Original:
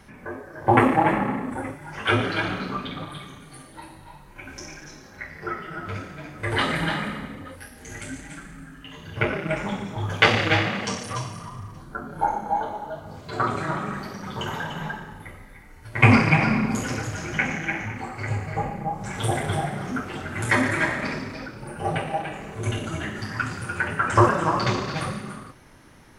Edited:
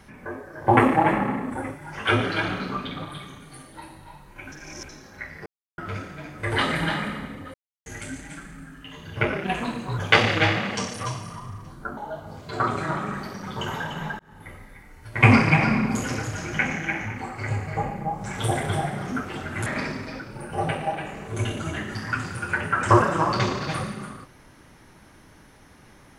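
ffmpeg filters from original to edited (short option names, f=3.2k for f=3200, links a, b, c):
-filter_complex "[0:a]asplit=12[a][b][c][d][e][f][g][h][i][j][k][l];[a]atrim=end=4.522[m];[b]atrim=start=4.518:end=4.892,asetpts=PTS-STARTPTS,areverse[n];[c]atrim=start=4.888:end=5.46,asetpts=PTS-STARTPTS,afade=t=out:st=0.568:d=0.004:c=hsin[o];[d]atrim=start=5.46:end=5.78,asetpts=PTS-STARTPTS,volume=0[p];[e]atrim=start=5.78:end=7.54,asetpts=PTS-STARTPTS,afade=t=in:d=0.004:c=hsin,afade=t=out:st=1.756:d=0.004:c=hsin[q];[f]atrim=start=7.54:end=7.86,asetpts=PTS-STARTPTS,volume=0[r];[g]atrim=start=7.86:end=9.444,asetpts=PTS-STARTPTS,afade=t=in:d=0.004:c=hsin[s];[h]atrim=start=9.44:end=10.08,asetpts=PTS-STARTPTS,asetrate=52038,aresample=44100[t];[i]atrim=start=10.076:end=12.072[u];[j]atrim=start=12.768:end=14.99,asetpts=PTS-STARTPTS,afade=t=out:st=2.218:d=0.004:c=hsin[v];[k]atrim=start=14.99:end=20.462,asetpts=PTS-STARTPTS,afade=t=in:d=0.33[w];[l]atrim=start=20.928[x];[m][n]acrossfade=d=0.004:c1=hsin:c2=hsin[y];[o][p][q][r][s]concat=n=5:v=0:a=1[z];[y][z]acrossfade=d=0.004:c1=hsin:c2=hsin[aa];[aa][t]acrossfade=d=0.004:c1=hsin:c2=hsin[ab];[ab][u]acrossfade=d=0.004:c1=hsin:c2=hsin[ac];[v][w]concat=n=2:v=0:a=1[ad];[ac][ad]acrossfade=d=0.004:c1=hsin:c2=hsin[ae];[ae][x]acrossfade=d=0.004:c1=hsin:c2=hsin"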